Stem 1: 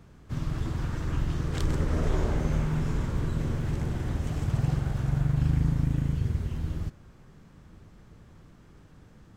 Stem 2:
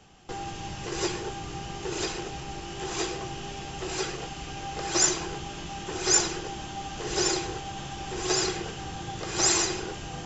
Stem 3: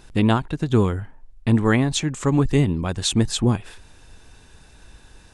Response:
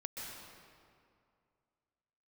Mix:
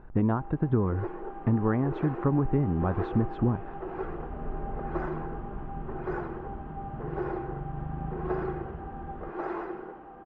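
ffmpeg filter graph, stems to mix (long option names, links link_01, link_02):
-filter_complex "[0:a]aecho=1:1:4.8:0.65,adelay=2400,volume=-13dB,asplit=2[link_01][link_02];[link_02]volume=-9.5dB[link_03];[1:a]highpass=frequency=210:width=0.5412,highpass=frequency=210:width=1.3066,dynaudnorm=framelen=740:gausssize=3:maxgain=9dB,volume=-11.5dB,asplit=3[link_04][link_05][link_06];[link_05]volume=-11dB[link_07];[link_06]volume=-9.5dB[link_08];[2:a]acompressor=threshold=-20dB:ratio=6,highshelf=frequency=3800:gain=6,volume=-1dB,asplit=2[link_09][link_10];[link_10]apad=whole_len=519120[link_11];[link_01][link_11]sidechaincompress=threshold=-39dB:ratio=8:attack=16:release=706[link_12];[3:a]atrim=start_sample=2205[link_13];[link_03][link_07]amix=inputs=2:normalize=0[link_14];[link_14][link_13]afir=irnorm=-1:irlink=0[link_15];[link_08]aecho=0:1:1121:1[link_16];[link_12][link_04][link_09][link_15][link_16]amix=inputs=5:normalize=0,lowpass=frequency=1400:width=0.5412,lowpass=frequency=1400:width=1.3066"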